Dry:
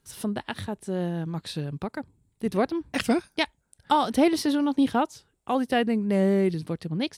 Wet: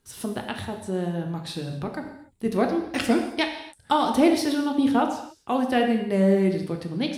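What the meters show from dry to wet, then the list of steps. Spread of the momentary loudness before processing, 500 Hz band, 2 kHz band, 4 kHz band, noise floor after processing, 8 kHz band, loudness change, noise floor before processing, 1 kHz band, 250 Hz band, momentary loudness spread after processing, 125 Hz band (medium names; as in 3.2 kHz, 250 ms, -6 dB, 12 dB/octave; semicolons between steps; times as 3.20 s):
11 LU, +2.0 dB, +1.5 dB, +1.5 dB, -58 dBFS, +1.5 dB, +2.0 dB, -72 dBFS, +1.5 dB, +2.0 dB, 12 LU, +1.0 dB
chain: gated-style reverb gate 310 ms falling, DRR 3 dB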